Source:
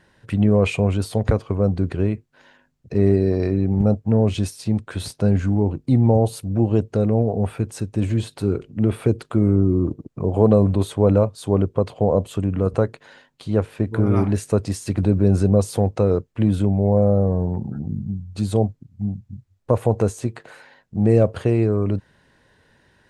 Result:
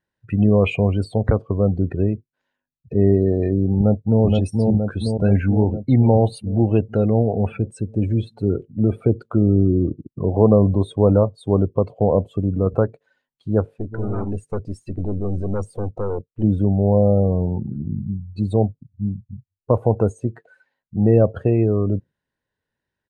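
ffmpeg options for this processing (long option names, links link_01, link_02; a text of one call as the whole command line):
ffmpeg -i in.wav -filter_complex "[0:a]asplit=2[link_01][link_02];[link_02]afade=type=in:start_time=3.77:duration=0.01,afade=type=out:start_time=4.23:duration=0.01,aecho=0:1:470|940|1410|1880|2350|2820|3290|3760|4230|4700|5170:0.749894|0.487431|0.31683|0.20594|0.133861|0.0870095|0.0565562|0.0367615|0.023895|0.0155317|0.0100956[link_03];[link_01][link_03]amix=inputs=2:normalize=0,asettb=1/sr,asplit=3[link_04][link_05][link_06];[link_04]atrim=end=5.244[link_07];[link_05]atrim=start=5.24:end=7.57,asetpts=PTS-STARTPTS,afade=type=in:duration=0.004:curve=qsin,afade=type=out:start_time=2.326:duration=0.004:curve=qsin,equalizer=frequency=2500:width=0.93:gain=9[link_08];[link_06]atrim=start=7.566[link_09];[link_07][link_08]acrossfade=duration=0.004:curve1=hsin:curve2=qsin[link_10];[link_10][link_09]acrossfade=duration=0.004:curve1=qsin:curve2=hsin,asplit=3[link_11][link_12][link_13];[link_11]afade=type=out:start_time=13.76:duration=0.02[link_14];[link_12]aeval=exprs='(tanh(11.2*val(0)+0.7)-tanh(0.7))/11.2':channel_layout=same,afade=type=in:start_time=13.76:duration=0.02,afade=type=out:start_time=16.42:duration=0.02[link_15];[link_13]afade=type=in:start_time=16.42:duration=0.02[link_16];[link_14][link_15][link_16]amix=inputs=3:normalize=0,afftdn=noise_reduction=26:noise_floor=-32,volume=1dB" out.wav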